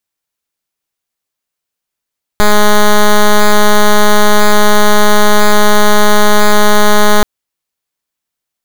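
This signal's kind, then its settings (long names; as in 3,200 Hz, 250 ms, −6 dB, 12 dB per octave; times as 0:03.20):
pulse wave 209 Hz, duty 8% −5 dBFS 4.83 s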